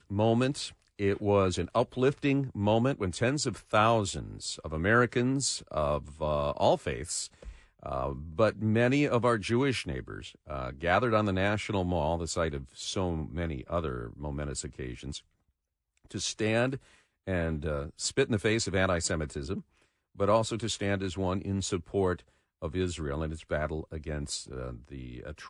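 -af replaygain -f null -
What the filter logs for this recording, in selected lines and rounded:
track_gain = +9.6 dB
track_peak = 0.230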